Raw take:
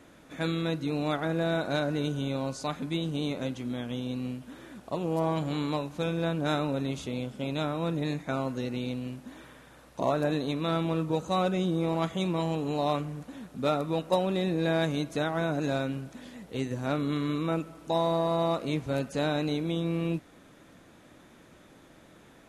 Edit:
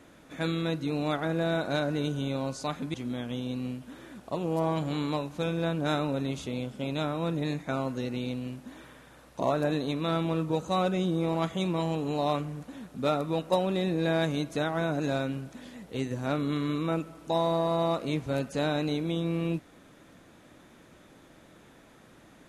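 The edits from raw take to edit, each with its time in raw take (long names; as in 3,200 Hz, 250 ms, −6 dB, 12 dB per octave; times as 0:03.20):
0:02.94–0:03.54: remove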